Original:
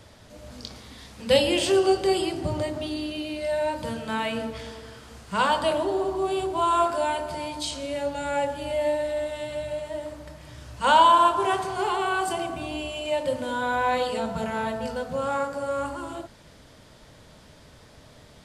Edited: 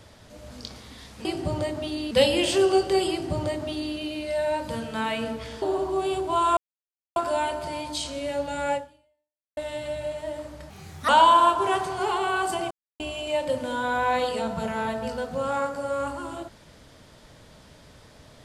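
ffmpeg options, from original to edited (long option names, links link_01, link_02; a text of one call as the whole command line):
ffmpeg -i in.wav -filter_complex "[0:a]asplit=10[link_01][link_02][link_03][link_04][link_05][link_06][link_07][link_08][link_09][link_10];[link_01]atrim=end=1.252[link_11];[link_02]atrim=start=2.238:end=3.102[link_12];[link_03]atrim=start=1.248:end=4.762[link_13];[link_04]atrim=start=5.878:end=6.83,asetpts=PTS-STARTPTS,afade=type=out:start_time=0.948:duration=0.004:curve=hsin,apad=pad_dur=0.59[link_14];[link_05]atrim=start=6.83:end=9.24,asetpts=PTS-STARTPTS,afade=type=in:duration=0.004:curve=hsin,afade=type=out:start_time=1.58:duration=0.83:curve=exp[link_15];[link_06]atrim=start=9.24:end=10.374,asetpts=PTS-STARTPTS,afade=type=in:duration=0.004:curve=hsin[link_16];[link_07]atrim=start=10.37:end=10.87,asetpts=PTS-STARTPTS,asetrate=56889,aresample=44100,atrim=end_sample=17093,asetpts=PTS-STARTPTS[link_17];[link_08]atrim=start=10.866:end=12.49,asetpts=PTS-STARTPTS,afade=type=out:start_time=1.62:duration=0.004:curve=hsin[link_18];[link_09]atrim=start=12.49:end=12.78,asetpts=PTS-STARTPTS,volume=0[link_19];[link_10]atrim=start=12.78,asetpts=PTS-STARTPTS,afade=type=in:duration=0.004:curve=hsin[link_20];[link_11][link_12]acrossfade=duration=0.004:curve1=hsin:curve2=hsin[link_21];[link_21][link_13]acrossfade=duration=0.004:curve1=hsin:curve2=hsin[link_22];[link_14][link_15][link_16]concat=n=3:v=0:a=1[link_23];[link_22][link_23]acrossfade=duration=0.004:curve1=hsin:curve2=hsin[link_24];[link_24][link_17]acrossfade=duration=0.004:curve1=hsin:curve2=hsin[link_25];[link_18][link_19][link_20]concat=n=3:v=0:a=1[link_26];[link_25][link_26]acrossfade=duration=0.004:curve1=hsin:curve2=hsin" out.wav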